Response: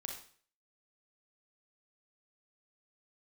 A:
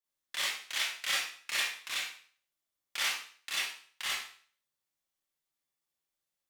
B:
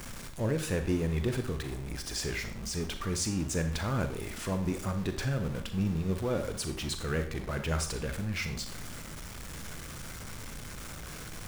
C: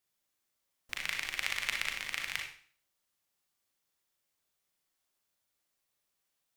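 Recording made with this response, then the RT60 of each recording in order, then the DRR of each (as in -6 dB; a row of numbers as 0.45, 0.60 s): C; 0.50, 0.50, 0.50 s; -7.5, 7.0, 1.0 dB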